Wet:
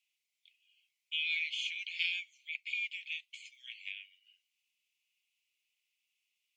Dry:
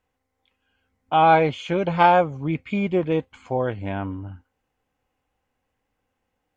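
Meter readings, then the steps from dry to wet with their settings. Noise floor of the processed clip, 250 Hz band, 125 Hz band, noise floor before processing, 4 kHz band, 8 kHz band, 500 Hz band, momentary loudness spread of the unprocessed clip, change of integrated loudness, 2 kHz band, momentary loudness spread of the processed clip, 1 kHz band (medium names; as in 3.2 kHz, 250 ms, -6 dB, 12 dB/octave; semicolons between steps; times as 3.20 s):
under -85 dBFS, under -40 dB, under -40 dB, -78 dBFS, 0.0 dB, no reading, under -40 dB, 13 LU, -15.0 dB, -6.5 dB, 14 LU, under -40 dB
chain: steep high-pass 2.3 kHz 72 dB/octave; treble shelf 4.4 kHz -6 dB; in parallel at 0 dB: compression, threshold -47 dBFS, peak gain reduction 15.5 dB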